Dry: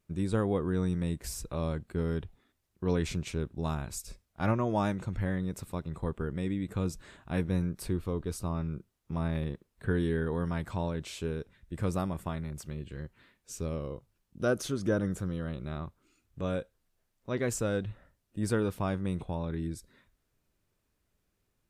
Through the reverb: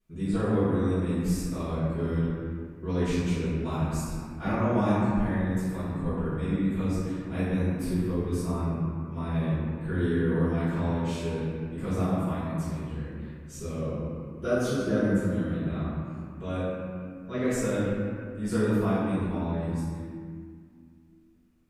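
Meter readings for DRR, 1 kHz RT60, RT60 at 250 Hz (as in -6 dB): -17.0 dB, 2.0 s, 3.0 s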